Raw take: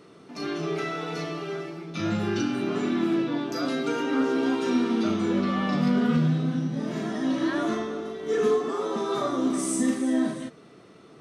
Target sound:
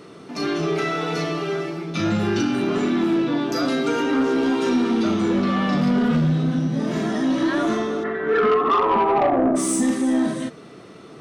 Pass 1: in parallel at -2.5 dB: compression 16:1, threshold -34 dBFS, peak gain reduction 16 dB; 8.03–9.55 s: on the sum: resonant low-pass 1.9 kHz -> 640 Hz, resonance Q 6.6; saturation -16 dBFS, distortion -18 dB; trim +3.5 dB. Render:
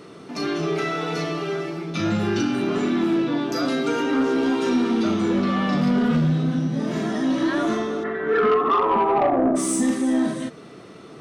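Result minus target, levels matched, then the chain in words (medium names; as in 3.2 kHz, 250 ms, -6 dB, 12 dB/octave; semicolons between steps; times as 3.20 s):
compression: peak gain reduction +6 dB
in parallel at -2.5 dB: compression 16:1, threshold -27.5 dBFS, peak gain reduction 10 dB; 8.03–9.55 s: on the sum: resonant low-pass 1.9 kHz -> 640 Hz, resonance Q 6.6; saturation -16 dBFS, distortion -17 dB; trim +3.5 dB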